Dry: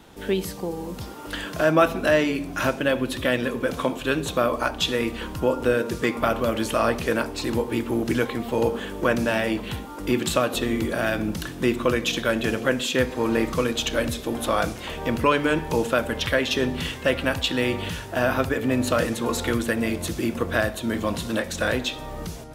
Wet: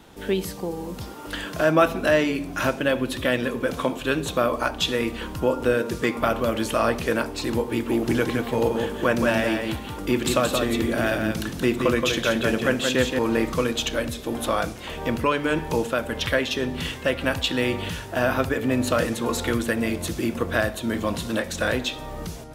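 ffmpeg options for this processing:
-filter_complex "[0:a]asettb=1/sr,asplit=3[s0][s1][s2];[s0]atrim=end=7.704[s3];[s1]atrim=start=7.7:end=13.19,asetpts=PTS-STARTPTS,afade=t=in:d=0.004:c=qsin,afade=t=out:st=5.486:d=0.004:c=qsin,aecho=1:1:175:0.562,atrim=end_sample=242109[s4];[s2]atrim=start=13.186[s5];[s3][s4]acrossfade=d=0.004:c1=hsin:c2=qsin[s6];[s6][s5]acrossfade=d=0.004:c1=qsin:c2=hsin,asettb=1/sr,asplit=3[s7][s8][s9];[s7]atrim=end=13.794[s10];[s8]atrim=start=13.79:end=17.21,asetpts=PTS-STARTPTS,afade=t=in:d=0.004:c=qsin,afade=t=out:st=3.416:d=0.004:c=qsin,tremolo=f=1.6:d=0.28[s11];[s9]atrim=start=17.206[s12];[s10][s11]acrossfade=d=0.004:c1=hsin:c2=qsin[s13];[s13][s12]acrossfade=d=0.004:c1=qsin:c2=hsin"

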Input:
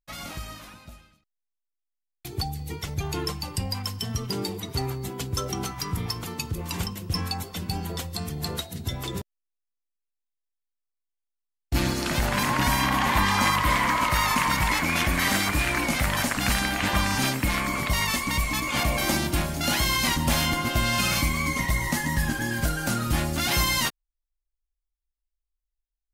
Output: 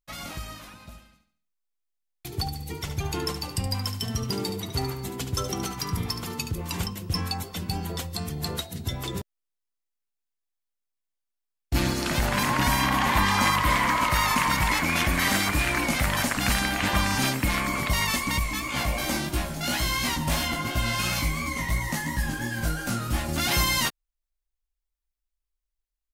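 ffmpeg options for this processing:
-filter_complex "[0:a]asplit=3[s0][s1][s2];[s0]afade=t=out:st=0.79:d=0.02[s3];[s1]aecho=1:1:72|144|216|288:0.335|0.137|0.0563|0.0231,afade=t=in:st=0.79:d=0.02,afade=t=out:st=6.5:d=0.02[s4];[s2]afade=t=in:st=6.5:d=0.02[s5];[s3][s4][s5]amix=inputs=3:normalize=0,asettb=1/sr,asplit=3[s6][s7][s8];[s6]atrim=end=18.394[s9];[s7]atrim=start=18.39:end=23.29,asetpts=PTS-STARTPTS,afade=t=in:d=0.004:c=qsin,afade=t=out:st=4.896:d=0.004:c=qsin,flanger=delay=15.5:depth=3.8:speed=2.9[s10];[s8]atrim=start=23.286[s11];[s9][s10]acrossfade=d=0.004:c1=hsin:c2=qsin[s12];[s12][s11]acrossfade=d=0.004:c1=qsin:c2=hsin"

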